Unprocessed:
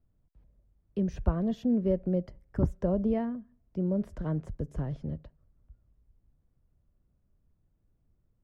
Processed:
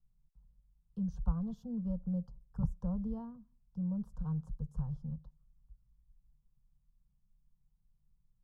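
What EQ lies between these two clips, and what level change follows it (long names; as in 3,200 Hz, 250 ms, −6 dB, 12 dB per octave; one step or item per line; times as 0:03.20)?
low-shelf EQ 210 Hz +11 dB
phaser with its sweep stopped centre 420 Hz, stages 8
phaser with its sweep stopped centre 910 Hz, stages 4
−8.0 dB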